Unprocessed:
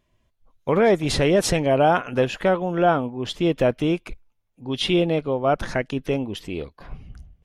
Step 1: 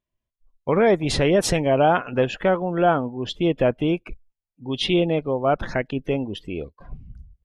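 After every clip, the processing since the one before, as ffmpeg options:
-af "afftdn=nr=18:nf=-40"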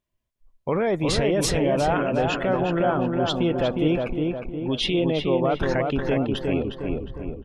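-filter_complex "[0:a]alimiter=limit=-18dB:level=0:latency=1:release=37,asplit=2[a][b];[b]adelay=359,lowpass=f=2.1k:p=1,volume=-3dB,asplit=2[c][d];[d]adelay=359,lowpass=f=2.1k:p=1,volume=0.52,asplit=2[e][f];[f]adelay=359,lowpass=f=2.1k:p=1,volume=0.52,asplit=2[g][h];[h]adelay=359,lowpass=f=2.1k:p=1,volume=0.52,asplit=2[i][j];[j]adelay=359,lowpass=f=2.1k:p=1,volume=0.52,asplit=2[k][l];[l]adelay=359,lowpass=f=2.1k:p=1,volume=0.52,asplit=2[m][n];[n]adelay=359,lowpass=f=2.1k:p=1,volume=0.52[o];[c][e][g][i][k][m][o]amix=inputs=7:normalize=0[p];[a][p]amix=inputs=2:normalize=0,volume=3dB"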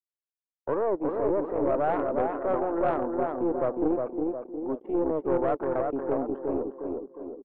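-af "asuperpass=centerf=580:order=8:qfactor=0.61,anlmdn=0.0631,aeval=exprs='(tanh(6.31*val(0)+0.55)-tanh(0.55))/6.31':c=same"

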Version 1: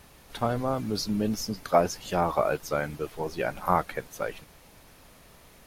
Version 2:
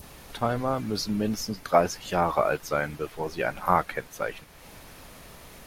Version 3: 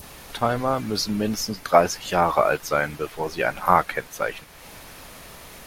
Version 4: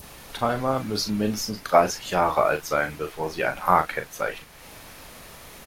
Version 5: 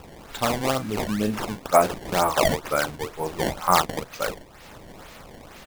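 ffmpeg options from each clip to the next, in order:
-af "adynamicequalizer=threshold=0.0112:dfrequency=1800:dqfactor=0.73:tfrequency=1800:tqfactor=0.73:attack=5:release=100:ratio=0.375:range=2:mode=boostabove:tftype=bell,acompressor=mode=upward:threshold=-38dB:ratio=2.5"
-af "lowshelf=f=500:g=-4.5,volume=6dB"
-filter_complex "[0:a]asplit=2[a][b];[b]adelay=38,volume=-8.5dB[c];[a][c]amix=inputs=2:normalize=0,volume=-2dB"
-af "acrusher=samples=20:mix=1:aa=0.000001:lfo=1:lforange=32:lforate=2.1"

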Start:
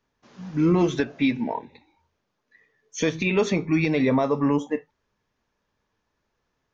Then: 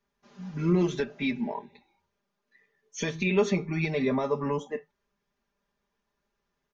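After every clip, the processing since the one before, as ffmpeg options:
-af "aecho=1:1:5:0.87,volume=-7dB"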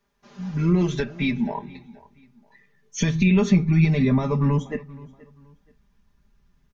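-filter_complex "[0:a]asubboost=boost=9.5:cutoff=160,asplit=2[a][b];[b]acompressor=threshold=-30dB:ratio=6,volume=2dB[c];[a][c]amix=inputs=2:normalize=0,asplit=2[d][e];[e]adelay=477,lowpass=f=4k:p=1,volume=-21dB,asplit=2[f][g];[g]adelay=477,lowpass=f=4k:p=1,volume=0.32[h];[d][f][h]amix=inputs=3:normalize=0"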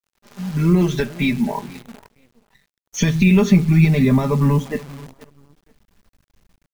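-af "acrusher=bits=8:dc=4:mix=0:aa=0.000001,volume=4.5dB"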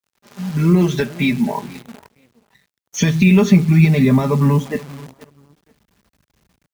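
-af "highpass=74,volume=2dB"

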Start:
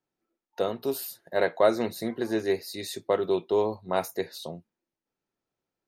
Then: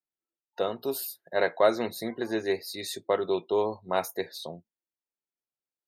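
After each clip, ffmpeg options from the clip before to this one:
-af "afftdn=nr=16:nf=-50,lowshelf=f=460:g=-6,volume=1.5dB"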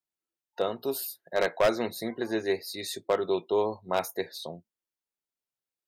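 -af "aeval=exprs='0.178*(abs(mod(val(0)/0.178+3,4)-2)-1)':c=same"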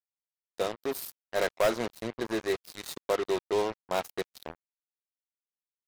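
-af "acrusher=bits=4:mix=0:aa=0.5,volume=-2dB"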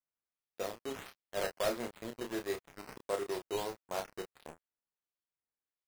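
-filter_complex "[0:a]acrusher=samples=9:mix=1:aa=0.000001:lfo=1:lforange=9:lforate=1.5,asplit=2[a][b];[b]adelay=30,volume=-6dB[c];[a][c]amix=inputs=2:normalize=0,volume=-8.5dB"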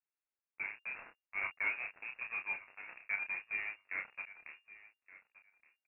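-af "lowpass=f=2.4k:t=q:w=0.5098,lowpass=f=2.4k:t=q:w=0.6013,lowpass=f=2.4k:t=q:w=0.9,lowpass=f=2.4k:t=q:w=2.563,afreqshift=-2800,aecho=1:1:1171|2342:0.126|0.0201,volume=-2.5dB"

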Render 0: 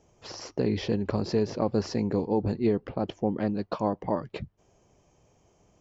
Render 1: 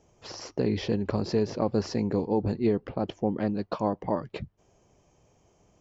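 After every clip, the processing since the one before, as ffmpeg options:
-af anull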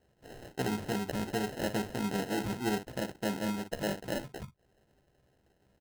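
-af "aecho=1:1:15|57:0.668|0.335,acrusher=samples=38:mix=1:aa=0.000001,volume=-8dB"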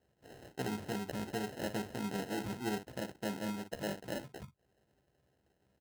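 -af "highpass=54,volume=-5dB"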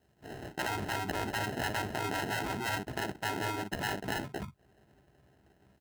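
-filter_complex "[0:a]afftfilt=real='re*lt(hypot(re,im),0.0447)':imag='im*lt(hypot(re,im),0.0447)':win_size=1024:overlap=0.75,equalizer=f=510:w=6.7:g=-10.5,acrossover=split=2700[a][b];[a]dynaudnorm=f=140:g=3:m=6dB[c];[c][b]amix=inputs=2:normalize=0,volume=5.5dB"

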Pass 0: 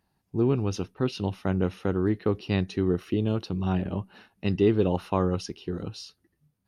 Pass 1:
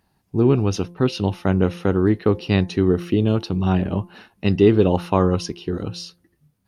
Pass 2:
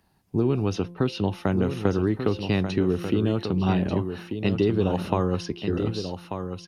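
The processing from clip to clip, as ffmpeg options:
-af "bandreject=f=173.8:t=h:w=4,bandreject=f=347.6:t=h:w=4,bandreject=f=521.4:t=h:w=4,bandreject=f=695.2:t=h:w=4,bandreject=f=869:t=h:w=4,bandreject=f=1.0428k:t=h:w=4,volume=7.5dB"
-filter_complex "[0:a]acrossover=split=140|4200[a][b][c];[a]acompressor=threshold=-31dB:ratio=4[d];[b]acompressor=threshold=-21dB:ratio=4[e];[c]acompressor=threshold=-47dB:ratio=4[f];[d][e][f]amix=inputs=3:normalize=0,aecho=1:1:1189:0.398"

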